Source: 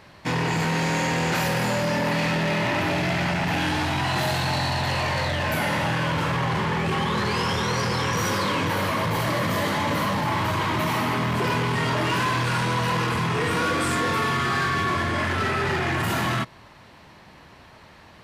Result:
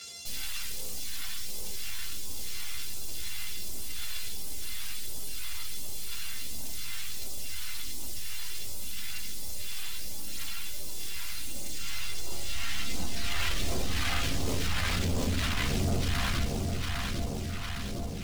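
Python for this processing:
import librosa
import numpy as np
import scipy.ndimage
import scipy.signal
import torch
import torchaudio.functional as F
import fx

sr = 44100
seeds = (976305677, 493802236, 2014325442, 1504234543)

p1 = np.r_[np.sort(x[:len(x) // 64 * 64].reshape(-1, 64), axis=1).ravel(), x[len(x) // 64 * 64:]]
p2 = fx.filter_sweep_bandpass(p1, sr, from_hz=5400.0, to_hz=250.0, start_s=11.34, end_s=14.0, q=0.86)
p3 = (np.mod(10.0 ** (24.5 / 20.0) * p2 + 1.0, 2.0) - 1.0) / 10.0 ** (24.5 / 20.0)
p4 = fx.chorus_voices(p3, sr, voices=6, hz=0.2, base_ms=13, depth_ms=2.6, mix_pct=65)
p5 = p4 + fx.echo_feedback(p4, sr, ms=806, feedback_pct=49, wet_db=-7.0, dry=0)
p6 = fx.phaser_stages(p5, sr, stages=2, low_hz=440.0, high_hz=1500.0, hz=1.4, feedback_pct=45)
p7 = fx.bass_treble(p6, sr, bass_db=2, treble_db=-5)
y = fx.env_flatten(p7, sr, amount_pct=50)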